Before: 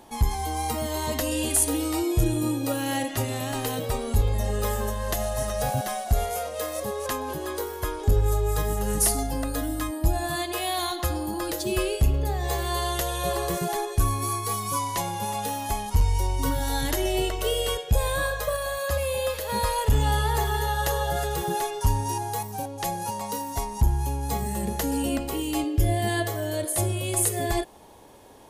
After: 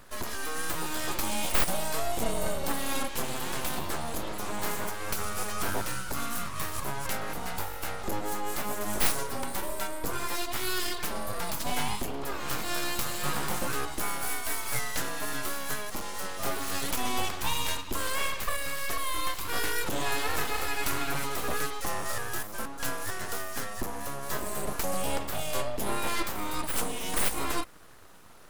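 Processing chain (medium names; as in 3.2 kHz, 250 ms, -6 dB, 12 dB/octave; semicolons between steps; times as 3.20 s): high-pass 130 Hz 24 dB/octave; full-wave rectifier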